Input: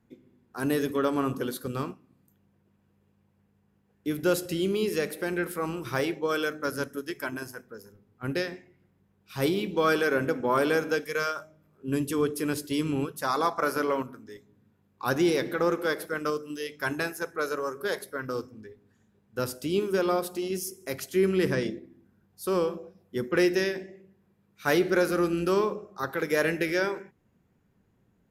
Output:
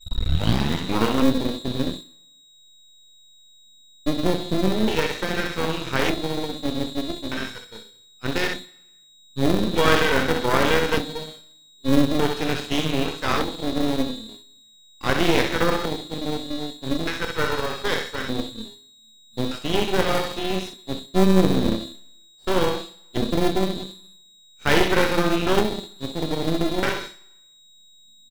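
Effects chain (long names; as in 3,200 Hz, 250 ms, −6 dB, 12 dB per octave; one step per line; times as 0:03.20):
turntable start at the beginning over 1.27 s
mains-hum notches 50/100/150/200/250/300/350 Hz
feedback echo with a high-pass in the loop 64 ms, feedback 51%, high-pass 490 Hz, level −3.5 dB
auto-filter low-pass square 0.41 Hz 270–3,200 Hz
in parallel at −6 dB: decimation without filtering 32×
on the sum: steady tone 3,800 Hz −34 dBFS
double-tracking delay 27 ms −10.5 dB
downward expander −31 dBFS
half-wave rectification
on a send at −15 dB: convolution reverb RT60 1.0 s, pre-delay 3 ms
on the sum: level +5.5 dB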